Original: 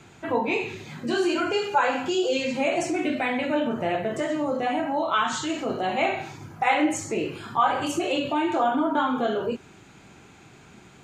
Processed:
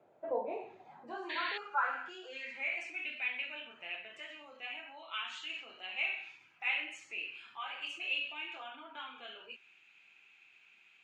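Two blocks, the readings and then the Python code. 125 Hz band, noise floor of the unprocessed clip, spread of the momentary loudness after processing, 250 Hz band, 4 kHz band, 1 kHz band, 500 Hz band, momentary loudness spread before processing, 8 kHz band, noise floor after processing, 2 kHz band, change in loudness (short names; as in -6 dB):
under -35 dB, -51 dBFS, 13 LU, -29.5 dB, -8.5 dB, -17.0 dB, -20.0 dB, 6 LU, -24.5 dB, -65 dBFS, -7.5 dB, -13.0 dB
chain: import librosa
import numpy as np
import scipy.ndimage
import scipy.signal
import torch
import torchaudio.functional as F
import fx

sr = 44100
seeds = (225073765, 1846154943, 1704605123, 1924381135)

y = fx.spec_paint(x, sr, seeds[0], shape='noise', start_s=1.29, length_s=0.29, low_hz=1600.0, high_hz=4600.0, level_db=-17.0)
y = fx.filter_sweep_bandpass(y, sr, from_hz=590.0, to_hz=2600.0, start_s=0.41, end_s=3.03, q=6.3)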